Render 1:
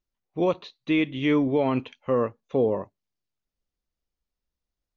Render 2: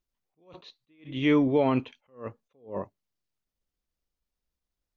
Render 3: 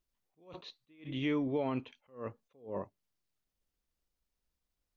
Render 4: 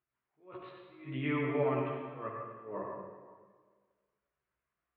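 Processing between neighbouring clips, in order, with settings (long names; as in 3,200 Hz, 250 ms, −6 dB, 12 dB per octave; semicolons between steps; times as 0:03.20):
level that may rise only so fast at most 180 dB per second
downward compressor 2 to 1, threshold −38 dBFS, peak gain reduction 11 dB
multi-voice chorus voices 6, 0.46 Hz, delay 15 ms, depth 1.4 ms; loudspeaker in its box 190–2,200 Hz, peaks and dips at 200 Hz −8 dB, 280 Hz −6 dB, 500 Hz −9 dB, 800 Hz −7 dB, 1,300 Hz +3 dB; convolution reverb RT60 1.6 s, pre-delay 53 ms, DRR 0 dB; level +7.5 dB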